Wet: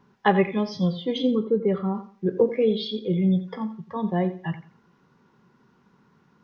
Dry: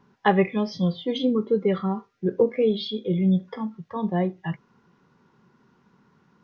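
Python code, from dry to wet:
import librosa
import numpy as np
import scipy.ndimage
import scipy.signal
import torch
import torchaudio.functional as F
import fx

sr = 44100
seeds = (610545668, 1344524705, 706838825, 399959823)

p1 = fx.lowpass(x, sr, hz=1100.0, slope=6, at=(1.34, 1.95))
y = p1 + fx.echo_feedback(p1, sr, ms=87, feedback_pct=26, wet_db=-14.0, dry=0)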